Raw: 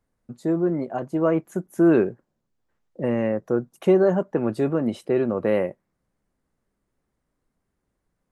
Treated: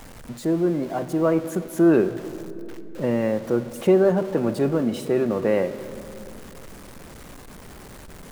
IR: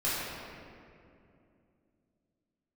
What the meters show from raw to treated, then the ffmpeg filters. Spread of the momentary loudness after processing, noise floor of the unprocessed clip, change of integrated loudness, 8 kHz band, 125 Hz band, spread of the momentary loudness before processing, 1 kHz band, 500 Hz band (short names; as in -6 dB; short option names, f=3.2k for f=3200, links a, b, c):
20 LU, -78 dBFS, +0.5 dB, n/a, +1.0 dB, 10 LU, +1.0 dB, +1.0 dB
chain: -filter_complex "[0:a]aeval=exprs='val(0)+0.5*0.0158*sgn(val(0))':c=same,asplit=2[a][b];[1:a]atrim=start_sample=2205,asetrate=39249,aresample=44100,adelay=41[c];[b][c]afir=irnorm=-1:irlink=0,volume=-23.5dB[d];[a][d]amix=inputs=2:normalize=0"